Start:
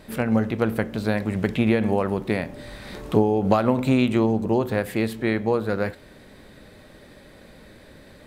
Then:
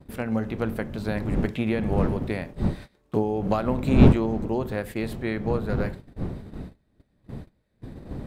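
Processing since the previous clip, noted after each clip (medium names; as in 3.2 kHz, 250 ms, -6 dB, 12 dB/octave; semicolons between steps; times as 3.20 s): wind noise 210 Hz -22 dBFS; gate -31 dBFS, range -24 dB; trim -5.5 dB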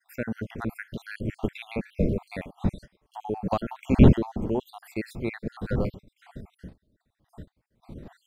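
random holes in the spectrogram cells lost 59%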